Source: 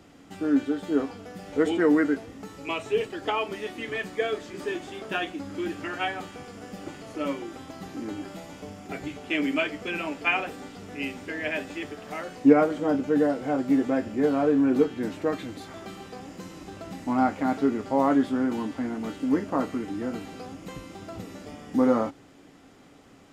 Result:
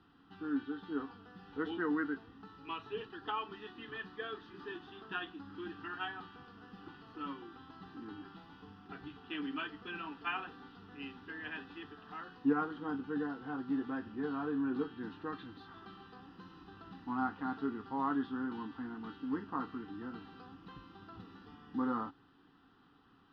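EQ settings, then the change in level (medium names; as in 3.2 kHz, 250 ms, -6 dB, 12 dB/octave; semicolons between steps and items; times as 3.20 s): distance through air 300 m; bass shelf 420 Hz -9.5 dB; static phaser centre 2.2 kHz, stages 6; -3.0 dB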